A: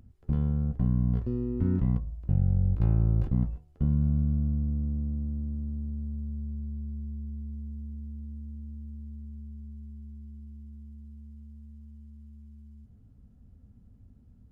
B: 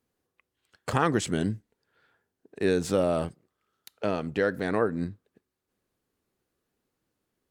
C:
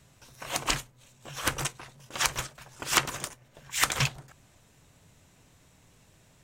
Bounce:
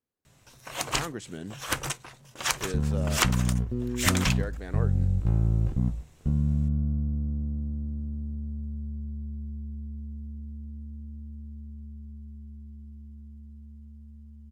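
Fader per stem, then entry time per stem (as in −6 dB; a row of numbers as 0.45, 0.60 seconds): 0.0, −11.5, −0.5 decibels; 2.45, 0.00, 0.25 seconds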